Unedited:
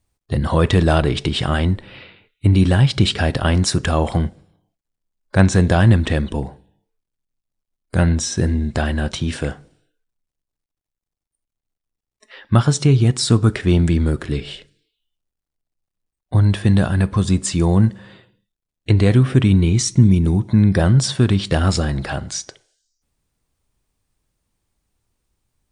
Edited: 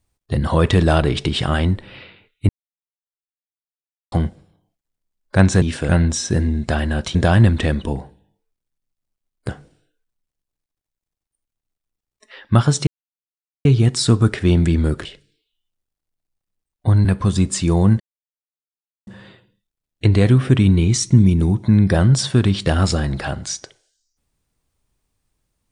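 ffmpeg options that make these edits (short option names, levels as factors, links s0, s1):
-filter_complex "[0:a]asplit=11[s0][s1][s2][s3][s4][s5][s6][s7][s8][s9][s10];[s0]atrim=end=2.49,asetpts=PTS-STARTPTS,afade=t=out:st=2.486:d=0.004:c=hsin[s11];[s1]atrim=start=2.49:end=4.12,asetpts=PTS-STARTPTS,volume=0[s12];[s2]atrim=start=4.12:end=5.622,asetpts=PTS-STARTPTS,afade=t=in:d=0.004:c=hsin[s13];[s3]atrim=start=9.218:end=9.492[s14];[s4]atrim=start=7.958:end=9.222[s15];[s5]atrim=start=5.618:end=7.962[s16];[s6]atrim=start=9.488:end=12.87,asetpts=PTS-STARTPTS,afade=t=out:st=3.378:d=0.004:c=hsin,apad=pad_dur=0.78[s17];[s7]atrim=start=12.87:end=14.272,asetpts=PTS-STARTPTS,afade=t=in:d=0.004:c=hsin[s18];[s8]atrim=start=14.518:end=16.522[s19];[s9]atrim=start=16.968:end=17.92,asetpts=PTS-STARTPTS,afade=t=out:st=0.948:d=0.004:c=hsin,apad=pad_dur=1.07[s20];[s10]atrim=start=17.92,asetpts=PTS-STARTPTS,afade=t=in:d=0.004:c=hsin[s21];[s11][s12][s13]concat=n=3:v=0:a=1[s22];[s22][s14]acrossfade=d=0.004:c1=hsin:c2=hsin[s23];[s23][s15]acrossfade=d=0.004:c1=hsin:c2=hsin[s24];[s24][s16]acrossfade=d=0.004:c1=hsin:c2=hsin[s25];[s17][s18]concat=n=2:v=0:a=1[s26];[s25][s26]acrossfade=d=0.004:c1=hsin:c2=hsin[s27];[s27][s19]acrossfade=d=0.004:c1=hsin:c2=hsin[s28];[s20][s21]concat=n=2:v=0:a=1[s29];[s28][s29]acrossfade=d=0.004:c1=hsin:c2=hsin"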